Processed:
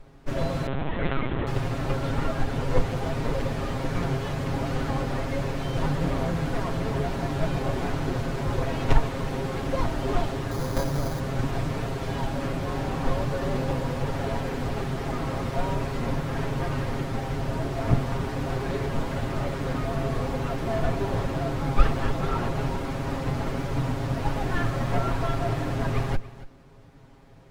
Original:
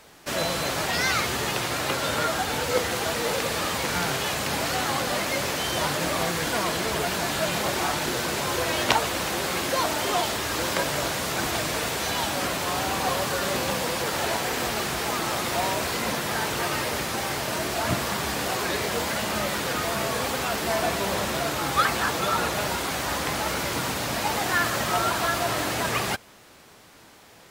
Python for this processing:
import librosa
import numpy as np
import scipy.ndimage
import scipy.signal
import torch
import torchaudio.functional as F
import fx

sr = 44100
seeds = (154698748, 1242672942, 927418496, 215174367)

p1 = fx.lower_of_two(x, sr, delay_ms=7.4)
p2 = fx.tilt_eq(p1, sr, slope=-4.5)
p3 = p2 + fx.echo_single(p2, sr, ms=281, db=-17.0, dry=0)
p4 = fx.lpc_vocoder(p3, sr, seeds[0], excitation='pitch_kept', order=10, at=(0.67, 1.47))
p5 = fx.resample_bad(p4, sr, factor=8, down='filtered', up='hold', at=(10.51, 11.2))
y = F.gain(torch.from_numpy(p5), -4.0).numpy()